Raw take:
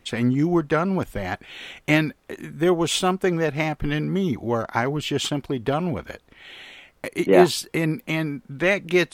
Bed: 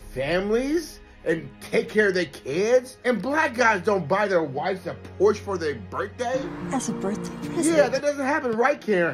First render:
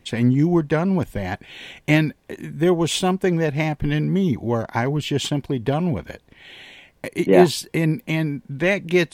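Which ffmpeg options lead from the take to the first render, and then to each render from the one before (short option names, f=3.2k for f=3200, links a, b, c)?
-af "equalizer=f=130:t=o:w=1.9:g=5.5,bandreject=f=1.3k:w=5.1"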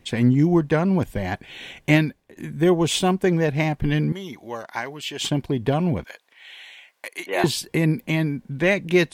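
-filter_complex "[0:a]asettb=1/sr,asplit=3[a][b][c];[a]atrim=end=4.124[d];[b]atrim=start=4.12:end=5.21,asetpts=PTS-STARTPTS,afade=t=in:d=0.004:c=qsin,afade=t=out:st=1.086:d=0.004:c=qsin,highpass=f=1.4k:p=1[e];[c]atrim=start=5.206[f];[d][e]acrossfade=d=0.004:c1=hsin:c2=qsin[g];[g][f]acrossfade=d=0.004:c1=qsin:c2=hsin,asettb=1/sr,asplit=3[h][i][j];[h]atrim=end=6.044[k];[i]atrim=start=6.04:end=7.44,asetpts=PTS-STARTPTS,afade=t=in:d=0.004:c=qsin,afade=t=out:st=1.396:d=0.004:c=qsin,highpass=930[l];[j]atrim=start=7.436[m];[k][l]acrossfade=d=0.004:c1=hsin:c2=qsin[n];[n][m]acrossfade=d=0.004:c1=qsin:c2=hsin,asplit=2[o][p];[o]atrim=end=2.36,asetpts=PTS-STARTPTS,afade=t=out:st=1.95:d=0.41:silence=0.0944061[q];[p]atrim=start=2.36,asetpts=PTS-STARTPTS,afade=t=in:d=0.004:c=hsin:silence=0.0944061[r];[q][r]concat=n=2:v=0:a=1"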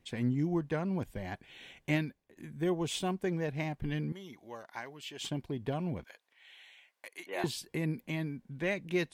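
-af "volume=-13.5dB"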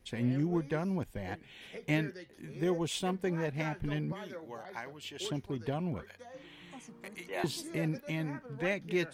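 -filter_complex "[1:a]volume=-24dB[a];[0:a][a]amix=inputs=2:normalize=0"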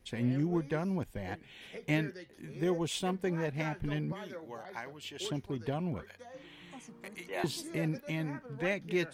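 -af anull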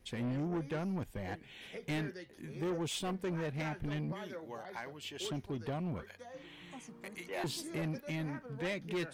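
-af "asoftclip=type=tanh:threshold=-31.5dB"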